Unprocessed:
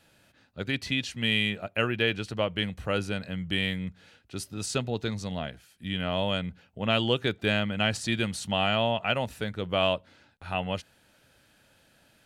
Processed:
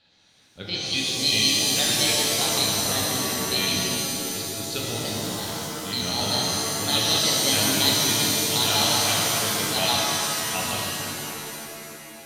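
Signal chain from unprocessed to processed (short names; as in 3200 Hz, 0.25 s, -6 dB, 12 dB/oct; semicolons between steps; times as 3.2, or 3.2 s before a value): trilling pitch shifter +4.5 st, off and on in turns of 94 ms; synth low-pass 4100 Hz, resonance Q 4.8; shimmer reverb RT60 2.9 s, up +7 st, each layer -2 dB, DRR -4.5 dB; gain -6.5 dB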